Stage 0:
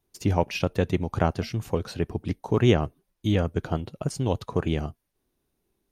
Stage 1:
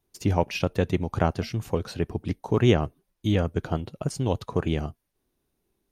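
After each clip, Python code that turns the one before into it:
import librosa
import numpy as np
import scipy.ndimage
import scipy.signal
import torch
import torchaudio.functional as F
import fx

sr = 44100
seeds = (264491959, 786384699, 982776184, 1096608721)

y = x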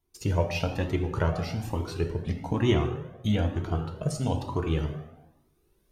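y = fx.recorder_agc(x, sr, target_db=-12.0, rise_db_per_s=7.2, max_gain_db=30)
y = fx.rev_plate(y, sr, seeds[0], rt60_s=1.1, hf_ratio=0.65, predelay_ms=0, drr_db=4.0)
y = fx.comb_cascade(y, sr, direction='rising', hz=1.1)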